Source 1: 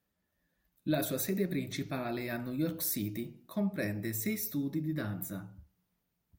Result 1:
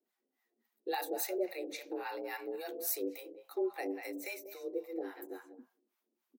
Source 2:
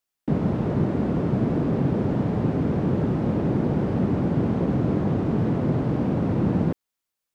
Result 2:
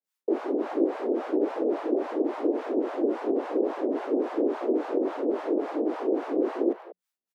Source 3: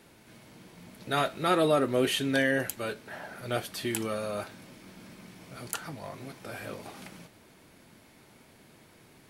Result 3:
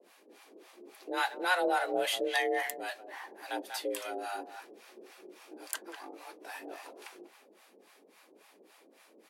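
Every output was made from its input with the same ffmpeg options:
-filter_complex "[0:a]asplit=2[a][b];[b]adelay=190,highpass=300,lowpass=3.4k,asoftclip=type=hard:threshold=-20dB,volume=-9dB[c];[a][c]amix=inputs=2:normalize=0,acrossover=split=490[d][e];[d]aeval=exprs='val(0)*(1-1/2+1/2*cos(2*PI*3.6*n/s))':c=same[f];[e]aeval=exprs='val(0)*(1-1/2-1/2*cos(2*PI*3.6*n/s))':c=same[g];[f][g]amix=inputs=2:normalize=0,afreqshift=180"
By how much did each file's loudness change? -4.0, -4.0, -4.0 LU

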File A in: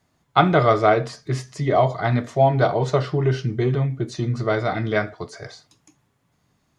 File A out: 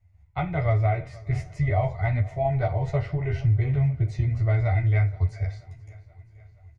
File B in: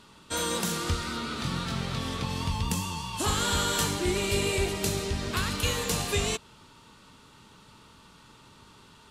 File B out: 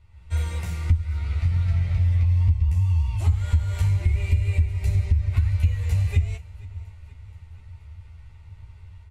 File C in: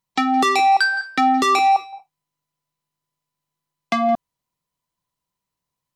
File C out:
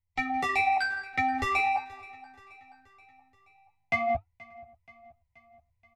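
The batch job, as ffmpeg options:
-filter_complex "[0:a]dynaudnorm=f=110:g=3:m=7dB,firequalizer=gain_entry='entry(110,0);entry(230,-23);entry(700,-12);entry(1200,-22);entry(2000,-5);entry(3200,-22)':delay=0.05:min_phase=1,flanger=delay=3.3:depth=8.2:regen=-76:speed=0.44:shape=sinusoidal,lowshelf=f=120:t=q:w=1.5:g=11,asplit=2[a][b];[b]adelay=12,volume=-2.5dB[c];[a][c]amix=inputs=2:normalize=0,asplit=2[d][e];[e]adelay=583.1,volume=-29dB,highshelf=f=4k:g=-13.1[f];[d][f]amix=inputs=2:normalize=0,acompressor=threshold=-21dB:ratio=6,bandreject=f=1.7k:w=5.6,asplit=2[g][h];[h]aecho=0:1:478|956|1434|1912:0.0794|0.0469|0.0277|0.0163[i];[g][i]amix=inputs=2:normalize=0,volume=4dB"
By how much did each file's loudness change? -4.5, +5.5, -10.0 LU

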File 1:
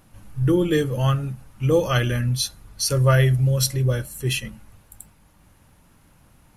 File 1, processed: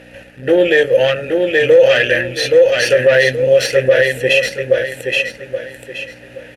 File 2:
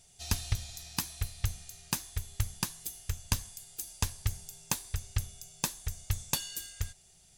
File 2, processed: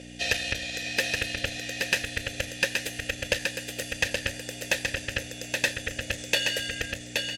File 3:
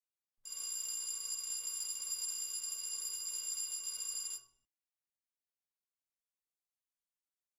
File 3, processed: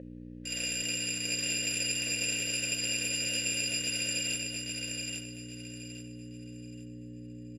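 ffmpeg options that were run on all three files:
-filter_complex "[0:a]equalizer=f=125:t=o:w=1:g=-8,equalizer=f=250:t=o:w=1:g=-11,equalizer=f=500:t=o:w=1:g=-5,asplit=2[a][b];[b]acompressor=threshold=-41dB:ratio=6,volume=1dB[c];[a][c]amix=inputs=2:normalize=0,aeval=exprs='val(0)+0.00708*(sin(2*PI*60*n/s)+sin(2*PI*2*60*n/s)/2+sin(2*PI*3*60*n/s)/3+sin(2*PI*4*60*n/s)/4+sin(2*PI*5*60*n/s)/5)':c=same,aeval=exprs='(tanh(15.8*val(0)+0.6)-tanh(0.6))/15.8':c=same,asplit=3[d][e][f];[d]bandpass=f=530:t=q:w=8,volume=0dB[g];[e]bandpass=f=1.84k:t=q:w=8,volume=-6dB[h];[f]bandpass=f=2.48k:t=q:w=8,volume=-9dB[i];[g][h][i]amix=inputs=3:normalize=0,asplit=2[j][k];[k]aecho=0:1:824|1648|2472|3296:0.631|0.189|0.0568|0.017[l];[j][l]amix=inputs=2:normalize=0,alimiter=level_in=31.5dB:limit=-1dB:release=50:level=0:latency=1,volume=-1dB"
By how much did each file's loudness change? +8.5, +7.5, +7.5 LU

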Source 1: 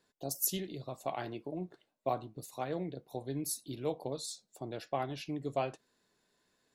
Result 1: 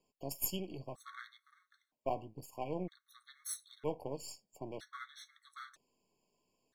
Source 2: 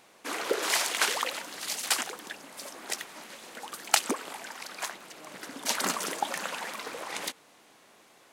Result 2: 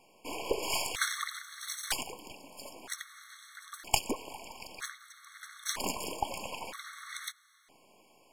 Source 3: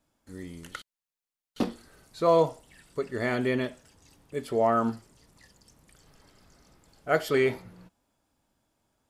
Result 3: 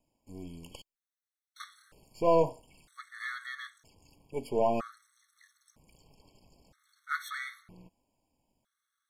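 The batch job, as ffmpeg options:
-af "aeval=exprs='if(lt(val(0),0),0.447*val(0),val(0))':c=same,afftfilt=real='re*gt(sin(2*PI*0.52*pts/sr)*(1-2*mod(floor(b*sr/1024/1100),2)),0)':imag='im*gt(sin(2*PI*0.52*pts/sr)*(1-2*mod(floor(b*sr/1024/1100),2)),0)':win_size=1024:overlap=0.75"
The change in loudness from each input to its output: -4.5, -5.5, -4.5 LU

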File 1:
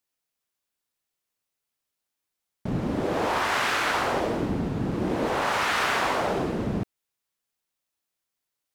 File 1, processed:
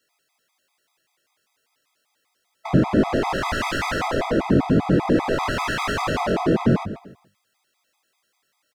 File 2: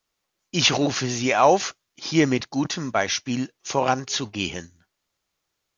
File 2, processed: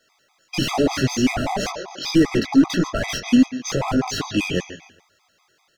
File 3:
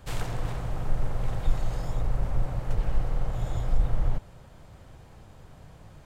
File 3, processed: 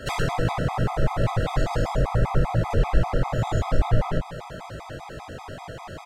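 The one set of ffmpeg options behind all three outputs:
-filter_complex "[0:a]aecho=1:1:140|280|420:0.112|0.0337|0.0101,asplit=2[a][b];[b]highpass=f=720:p=1,volume=27dB,asoftclip=type=tanh:threshold=-4.5dB[c];[a][c]amix=inputs=2:normalize=0,lowpass=f=3.5k:p=1,volume=-6dB,flanger=delay=18.5:depth=3.8:speed=2.3,equalizer=f=230:t=o:w=1.6:g=-2.5,asoftclip=type=hard:threshold=-15dB,bandreject=f=50:t=h:w=6,bandreject=f=100:t=h:w=6,bandreject=f=150:t=h:w=6,bandreject=f=200:t=h:w=6,acrossover=split=330[d][e];[e]acompressor=threshold=-34dB:ratio=2[f];[d][f]amix=inputs=2:normalize=0,lowshelf=f=490:g=7.5,afftfilt=real='re*gt(sin(2*PI*5.1*pts/sr)*(1-2*mod(floor(b*sr/1024/650),2)),0)':imag='im*gt(sin(2*PI*5.1*pts/sr)*(1-2*mod(floor(b*sr/1024/650),2)),0)':win_size=1024:overlap=0.75,volume=4dB"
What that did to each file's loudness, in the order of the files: +4.0, +2.0, +7.0 LU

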